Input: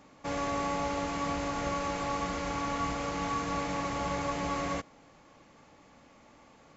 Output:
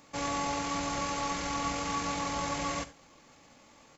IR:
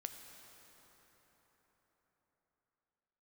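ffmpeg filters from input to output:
-filter_complex "[0:a]highshelf=f=2900:g=11,atempo=1.7[s0];[1:a]atrim=start_sample=2205,atrim=end_sample=3969[s1];[s0][s1]afir=irnorm=-1:irlink=0,volume=1.33"

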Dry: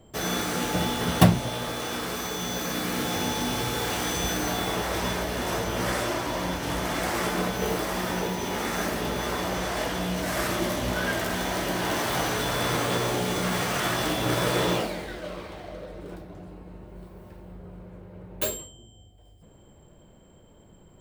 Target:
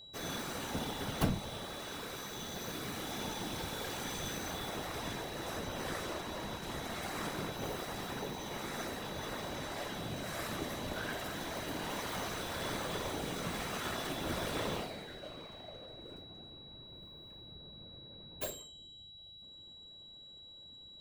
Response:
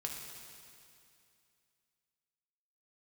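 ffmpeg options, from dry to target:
-af "aeval=exprs='(tanh(4.47*val(0)+0.5)-tanh(0.5))/4.47':c=same,afftfilt=real='hypot(re,im)*cos(2*PI*random(0))':imag='hypot(re,im)*sin(2*PI*random(1))':win_size=512:overlap=0.75,aeval=exprs='val(0)+0.00447*sin(2*PI*3900*n/s)':c=same,volume=0.631"

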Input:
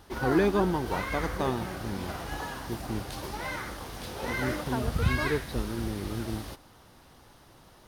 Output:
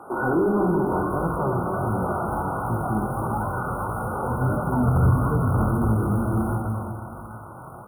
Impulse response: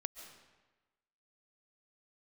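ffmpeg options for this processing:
-filter_complex "[0:a]acrossover=split=260[s0][s1];[s1]acompressor=threshold=0.00891:ratio=6[s2];[s0][s2]amix=inputs=2:normalize=0,asubboost=boost=11:cutoff=110,asplit=2[s3][s4];[s4]aeval=exprs='sgn(val(0))*max(abs(val(0))-0.0141,0)':c=same,volume=0.251[s5];[s3][s5]amix=inputs=2:normalize=0,lowshelf=f=200:g=-6,aecho=1:1:64|128|192|256:0.473|0.142|0.0426|0.0128[s6];[1:a]atrim=start_sample=2205,asetrate=25578,aresample=44100[s7];[s6][s7]afir=irnorm=-1:irlink=0,flanger=delay=17.5:depth=6.6:speed=1.5,acrusher=bits=5:mode=log:mix=0:aa=0.000001,highpass=86,asplit=2[s8][s9];[s9]highpass=f=720:p=1,volume=31.6,asoftclip=type=tanh:threshold=0.316[s10];[s8][s10]amix=inputs=2:normalize=0,lowpass=f=1100:p=1,volume=0.501,afftfilt=real='re*(1-between(b*sr/4096,1500,8900))':imag='im*(1-between(b*sr/4096,1500,8900))':win_size=4096:overlap=0.75,volume=1.12"

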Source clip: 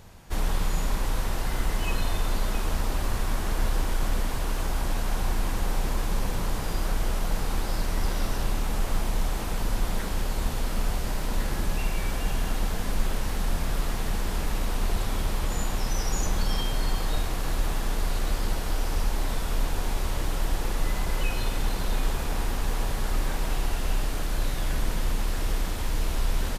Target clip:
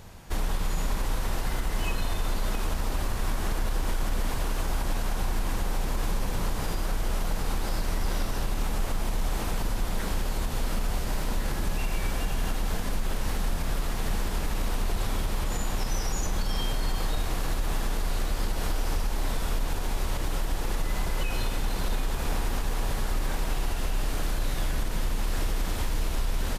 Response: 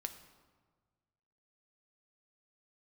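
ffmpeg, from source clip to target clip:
-af "alimiter=limit=0.0891:level=0:latency=1:release=125,volume=1.33"

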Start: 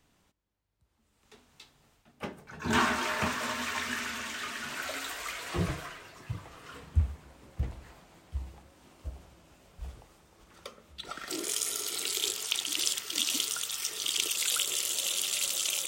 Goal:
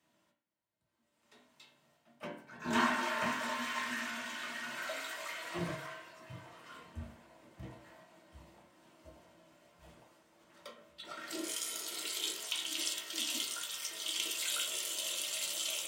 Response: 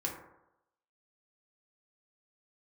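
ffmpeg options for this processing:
-filter_complex "[0:a]highpass=170[s0];[1:a]atrim=start_sample=2205,asetrate=83790,aresample=44100[s1];[s0][s1]afir=irnorm=-1:irlink=0,volume=0.794"

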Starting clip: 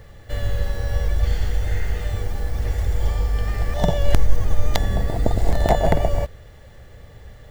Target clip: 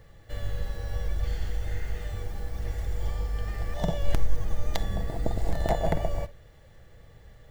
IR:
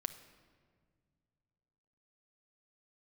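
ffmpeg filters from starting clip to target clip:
-filter_complex "[1:a]atrim=start_sample=2205,atrim=end_sample=3087[s0];[0:a][s0]afir=irnorm=-1:irlink=0,volume=0.422"

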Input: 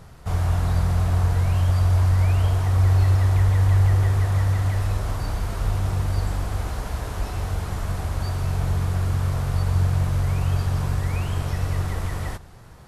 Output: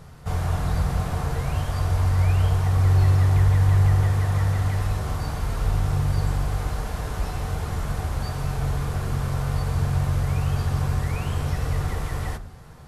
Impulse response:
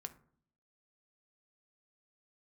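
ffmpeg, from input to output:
-filter_complex "[1:a]atrim=start_sample=2205[s0];[0:a][s0]afir=irnorm=-1:irlink=0,volume=1.68"

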